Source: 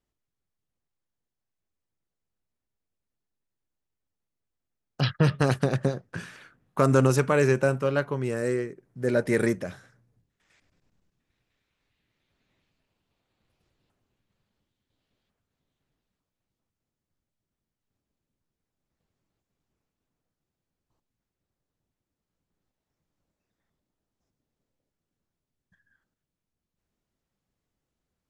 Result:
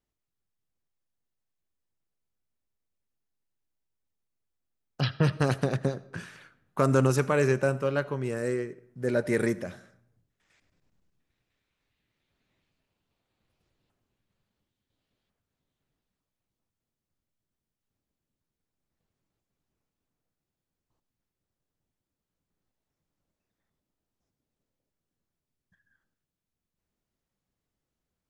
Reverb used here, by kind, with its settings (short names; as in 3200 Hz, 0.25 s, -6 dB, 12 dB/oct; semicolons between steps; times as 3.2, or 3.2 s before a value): digital reverb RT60 0.7 s, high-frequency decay 0.7×, pre-delay 40 ms, DRR 19 dB; gain -2.5 dB